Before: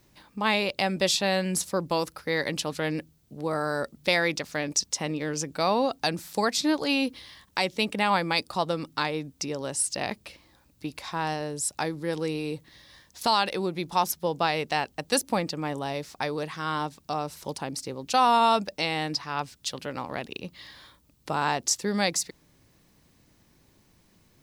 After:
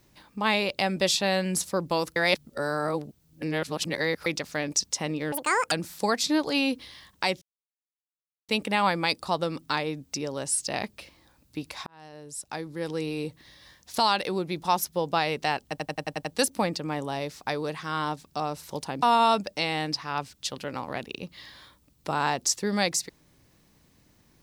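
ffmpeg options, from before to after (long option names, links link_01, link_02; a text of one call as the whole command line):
ffmpeg -i in.wav -filter_complex "[0:a]asplit=14[link_01][link_02][link_03][link_04][link_05][link_06][link_07][link_08][link_09][link_10][link_11][link_12][link_13][link_14];[link_01]atrim=end=2.162[link_15];[link_02]atrim=start=2.158:end=4.262,asetpts=PTS-STARTPTS,areverse[link_16];[link_03]atrim=start=4.258:end=5.324[link_17];[link_04]atrim=start=5.32:end=6.06,asetpts=PTS-STARTPTS,asetrate=82467,aresample=44100,atrim=end_sample=17451,asetpts=PTS-STARTPTS[link_18];[link_05]atrim=start=6.056:end=7.76,asetpts=PTS-STARTPTS,afade=type=out:start_time=1.7:duration=0.004:curve=hsin,apad=pad_dur=1.07[link_19];[link_06]atrim=start=7.76:end=11.14,asetpts=PTS-STARTPTS,afade=type=in:duration=0.004:curve=hsin,afade=type=out:start_time=3.376:duration=0.004:curve=hsin[link_20];[link_07]atrim=start=11.14:end=15.052,asetpts=PTS-STARTPTS,afade=type=in:duration=1.31[link_21];[link_08]atrim=start=14.958:end=15.052[link_22];[link_09]atrim=start=14.958:end=15.052[link_23];[link_10]atrim=start=14.958:end=15.052[link_24];[link_11]atrim=start=14.958:end=15.052[link_25];[link_12]atrim=start=14.958:end=15.052[link_26];[link_13]atrim=start=14.958:end=17.762[link_27];[link_14]atrim=start=18.238[link_28];[link_15][link_16]acrossfade=duration=0.004:curve1=hsin:curve2=hsin[link_29];[link_29][link_17]acrossfade=duration=0.004:curve1=hsin:curve2=hsin[link_30];[link_30][link_18]acrossfade=duration=0.004:curve1=hsin:curve2=hsin[link_31];[link_19][link_20][link_21]concat=n=3:v=0:a=1[link_32];[link_31][link_32]acrossfade=duration=0.004:curve1=hsin:curve2=hsin[link_33];[link_33][link_22]acrossfade=duration=0.004:curve1=hsin:curve2=hsin[link_34];[link_34][link_23]acrossfade=duration=0.004:curve1=hsin:curve2=hsin[link_35];[link_35][link_24]acrossfade=duration=0.004:curve1=hsin:curve2=hsin[link_36];[link_36][link_25]acrossfade=duration=0.004:curve1=hsin:curve2=hsin[link_37];[link_37][link_26]acrossfade=duration=0.004:curve1=hsin:curve2=hsin[link_38];[link_38][link_27]acrossfade=duration=0.004:curve1=hsin:curve2=hsin[link_39];[link_39][link_28]acrossfade=duration=0.004:curve1=hsin:curve2=hsin" out.wav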